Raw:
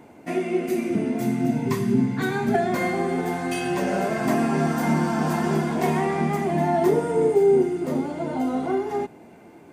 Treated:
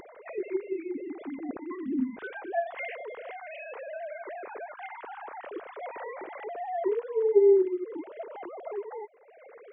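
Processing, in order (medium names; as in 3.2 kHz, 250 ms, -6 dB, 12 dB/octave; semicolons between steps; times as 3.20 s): formants replaced by sine waves; 3.23–5.46 s: high-pass 230 Hz 12 dB/octave; upward compressor, threshold -28 dBFS; trim -8.5 dB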